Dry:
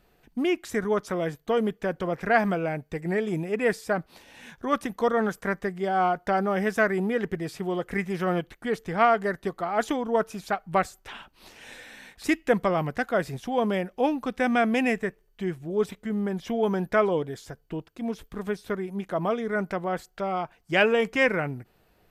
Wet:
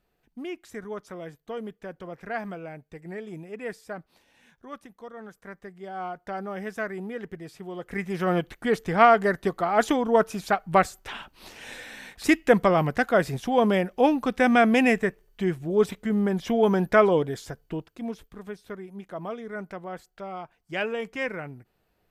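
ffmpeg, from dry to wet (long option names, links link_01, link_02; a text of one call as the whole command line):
ffmpeg -i in.wav -af "volume=12.5dB,afade=type=out:start_time=3.99:duration=1.1:silence=0.375837,afade=type=in:start_time=5.09:duration=1.38:silence=0.298538,afade=type=in:start_time=7.74:duration=0.81:silence=0.237137,afade=type=out:start_time=17.38:duration=1:silence=0.251189" out.wav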